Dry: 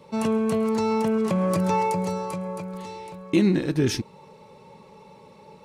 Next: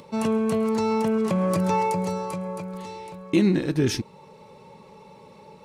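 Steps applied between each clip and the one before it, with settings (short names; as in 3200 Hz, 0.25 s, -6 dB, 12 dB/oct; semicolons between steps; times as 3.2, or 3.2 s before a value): upward compressor, threshold -44 dBFS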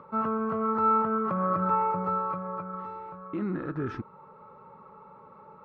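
limiter -17 dBFS, peak gain reduction 8.5 dB; synth low-pass 1300 Hz, resonance Q 14; gain -7 dB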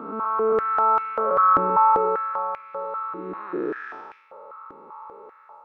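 time blur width 0.368 s; AGC gain up to 3 dB; stepped high-pass 5.1 Hz 300–2300 Hz; gain +1.5 dB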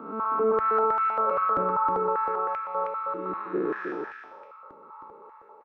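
limiter -19 dBFS, peak gain reduction 11 dB; echo 0.316 s -4 dB; three-band expander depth 40%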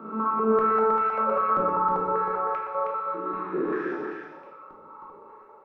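reverb RT60 0.85 s, pre-delay 5 ms, DRR -0.5 dB; gain -2 dB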